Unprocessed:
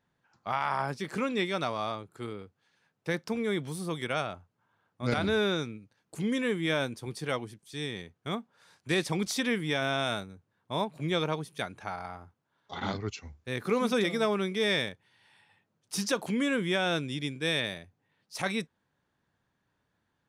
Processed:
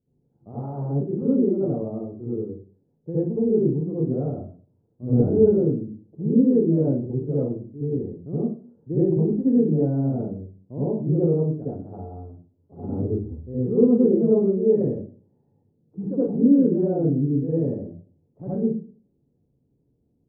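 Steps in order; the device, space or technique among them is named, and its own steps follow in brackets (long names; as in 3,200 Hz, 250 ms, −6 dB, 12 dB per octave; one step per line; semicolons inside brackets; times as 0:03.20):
next room (low-pass filter 430 Hz 24 dB per octave; convolution reverb RT60 0.40 s, pre-delay 63 ms, DRR −10 dB)
level +2 dB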